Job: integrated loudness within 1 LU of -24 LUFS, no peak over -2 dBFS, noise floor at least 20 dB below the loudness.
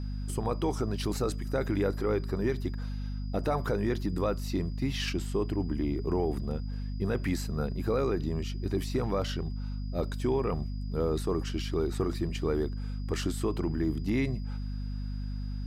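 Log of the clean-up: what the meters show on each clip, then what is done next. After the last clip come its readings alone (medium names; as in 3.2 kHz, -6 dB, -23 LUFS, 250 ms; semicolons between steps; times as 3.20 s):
hum 50 Hz; highest harmonic 250 Hz; hum level -32 dBFS; steady tone 4.9 kHz; tone level -57 dBFS; loudness -32.0 LUFS; peak level -17.0 dBFS; loudness target -24.0 LUFS
-> hum notches 50/100/150/200/250 Hz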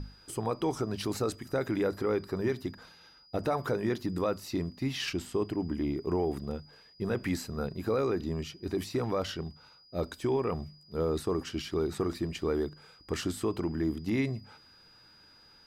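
hum not found; steady tone 4.9 kHz; tone level -57 dBFS
-> band-stop 4.9 kHz, Q 30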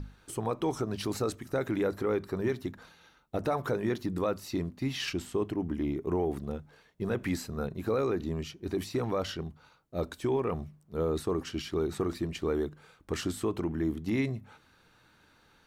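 steady tone not found; loudness -33.0 LUFS; peak level -18.5 dBFS; loudness target -24.0 LUFS
-> trim +9 dB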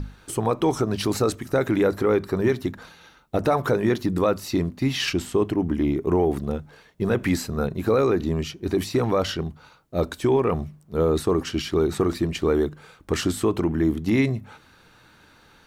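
loudness -24.0 LUFS; peak level -9.5 dBFS; noise floor -54 dBFS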